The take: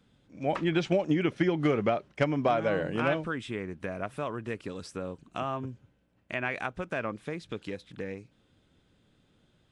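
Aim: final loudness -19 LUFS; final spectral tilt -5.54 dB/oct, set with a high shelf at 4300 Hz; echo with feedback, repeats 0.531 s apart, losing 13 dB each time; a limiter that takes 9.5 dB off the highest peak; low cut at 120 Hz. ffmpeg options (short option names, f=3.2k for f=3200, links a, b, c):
-af "highpass=120,highshelf=f=4.3k:g=-8,alimiter=limit=-21dB:level=0:latency=1,aecho=1:1:531|1062|1593:0.224|0.0493|0.0108,volume=15dB"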